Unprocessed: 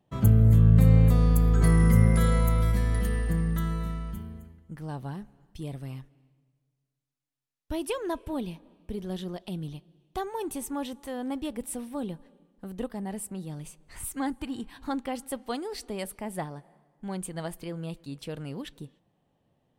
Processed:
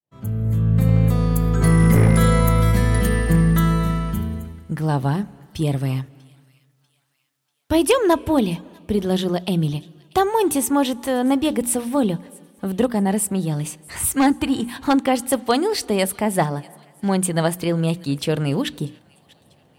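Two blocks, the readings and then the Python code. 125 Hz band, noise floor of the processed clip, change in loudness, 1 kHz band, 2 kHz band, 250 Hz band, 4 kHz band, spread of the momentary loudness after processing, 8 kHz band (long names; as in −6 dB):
+5.0 dB, −64 dBFS, +7.0 dB, +13.5 dB, +12.0 dB, +10.5 dB, +14.5 dB, 11 LU, +14.0 dB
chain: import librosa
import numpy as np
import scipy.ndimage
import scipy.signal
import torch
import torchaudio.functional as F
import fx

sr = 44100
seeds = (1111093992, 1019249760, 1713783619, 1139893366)

p1 = fx.fade_in_head(x, sr, length_s=2.95)
p2 = scipy.signal.sosfilt(scipy.signal.butter(4, 62.0, 'highpass', fs=sr, output='sos'), p1)
p3 = fx.rider(p2, sr, range_db=4, speed_s=2.0)
p4 = p2 + (p3 * 10.0 ** (3.0 / 20.0))
p5 = fx.hum_notches(p4, sr, base_hz=60, count=5)
p6 = 10.0 ** (-12.5 / 20.0) * (np.abs((p5 / 10.0 ** (-12.5 / 20.0) + 3.0) % 4.0 - 2.0) - 1.0)
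p7 = p6 + fx.echo_wet_highpass(p6, sr, ms=642, feedback_pct=42, hz=1900.0, wet_db=-23.0, dry=0)
y = p7 * 10.0 ** (6.0 / 20.0)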